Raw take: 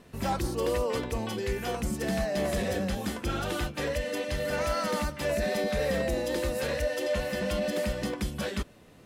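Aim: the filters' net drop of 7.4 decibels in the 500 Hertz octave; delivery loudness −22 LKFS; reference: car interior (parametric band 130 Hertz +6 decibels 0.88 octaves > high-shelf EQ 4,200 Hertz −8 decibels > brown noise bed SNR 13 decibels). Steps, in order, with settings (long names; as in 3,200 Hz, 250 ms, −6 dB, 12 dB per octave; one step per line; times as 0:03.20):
parametric band 130 Hz +6 dB 0.88 octaves
parametric band 500 Hz −9 dB
high-shelf EQ 4,200 Hz −8 dB
brown noise bed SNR 13 dB
level +11 dB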